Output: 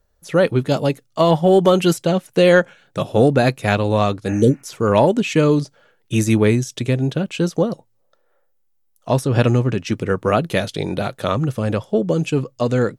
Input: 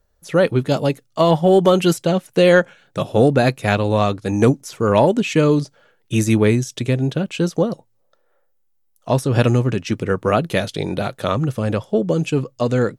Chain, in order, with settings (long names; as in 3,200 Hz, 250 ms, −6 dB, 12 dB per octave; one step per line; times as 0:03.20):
0:04.31–0:04.60: healed spectral selection 600–2,900 Hz both
0:09.25–0:09.80: high-shelf EQ 8,400 Hz −8 dB